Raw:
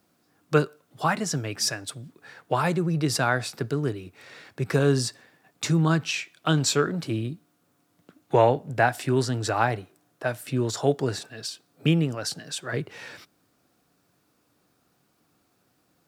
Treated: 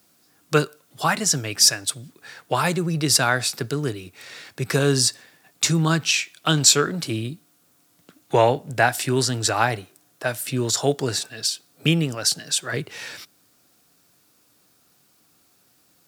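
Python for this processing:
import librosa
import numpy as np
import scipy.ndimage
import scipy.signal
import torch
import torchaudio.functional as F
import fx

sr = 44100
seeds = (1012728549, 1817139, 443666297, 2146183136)

y = fx.high_shelf(x, sr, hz=2600.0, db=12.0)
y = F.gain(torch.from_numpy(y), 1.0).numpy()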